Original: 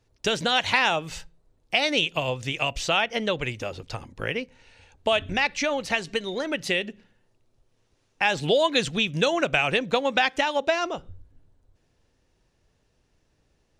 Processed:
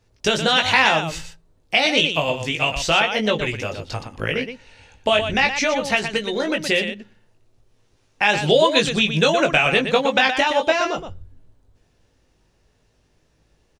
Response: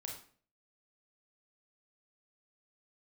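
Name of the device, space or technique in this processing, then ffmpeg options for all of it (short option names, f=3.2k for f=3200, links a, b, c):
slapback doubling: -filter_complex "[0:a]asplit=3[a][b][c];[b]adelay=19,volume=-4.5dB[d];[c]adelay=120,volume=-8dB[e];[a][d][e]amix=inputs=3:normalize=0,volume=4dB"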